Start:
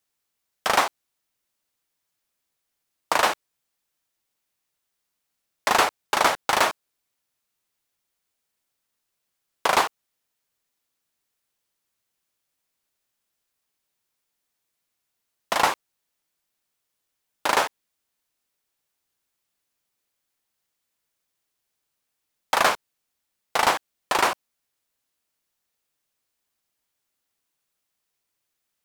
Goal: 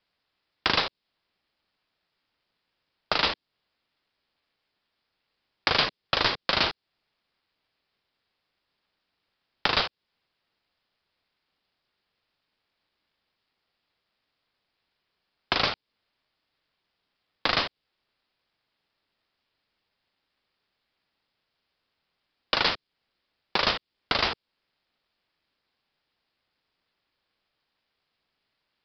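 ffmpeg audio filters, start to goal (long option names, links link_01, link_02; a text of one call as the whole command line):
ffmpeg -i in.wav -filter_complex "[0:a]acrossover=split=220|3000[link_01][link_02][link_03];[link_02]acompressor=threshold=-33dB:ratio=6[link_04];[link_01][link_04][link_03]amix=inputs=3:normalize=0,aeval=exprs='val(0)*sin(2*PI*290*n/s)':channel_layout=same,aresample=11025,aresample=44100,volume=9dB" out.wav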